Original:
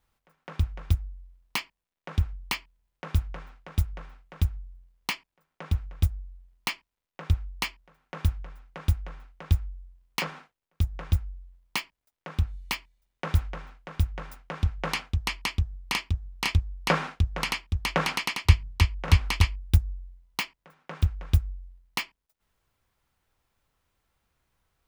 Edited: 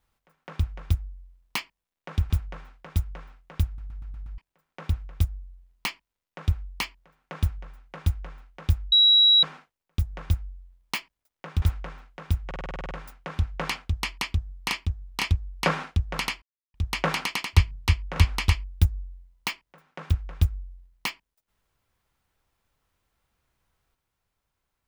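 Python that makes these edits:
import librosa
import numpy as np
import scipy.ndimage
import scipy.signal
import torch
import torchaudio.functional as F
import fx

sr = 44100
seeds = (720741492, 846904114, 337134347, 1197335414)

y = fx.edit(x, sr, fx.cut(start_s=2.3, length_s=0.82),
    fx.stutter_over(start_s=4.48, slice_s=0.12, count=6),
    fx.bleep(start_s=9.74, length_s=0.51, hz=3880.0, db=-13.5),
    fx.cut(start_s=12.44, length_s=0.87),
    fx.stutter(start_s=14.15, slice_s=0.05, count=10),
    fx.insert_silence(at_s=17.66, length_s=0.32), tone=tone)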